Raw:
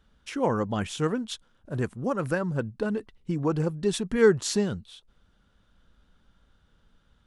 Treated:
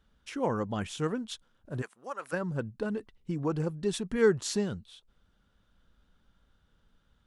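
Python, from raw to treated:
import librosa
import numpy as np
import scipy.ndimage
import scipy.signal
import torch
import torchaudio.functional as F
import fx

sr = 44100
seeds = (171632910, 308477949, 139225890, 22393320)

y = fx.highpass(x, sr, hz=780.0, slope=12, at=(1.81, 2.32), fade=0.02)
y = y * librosa.db_to_amplitude(-4.5)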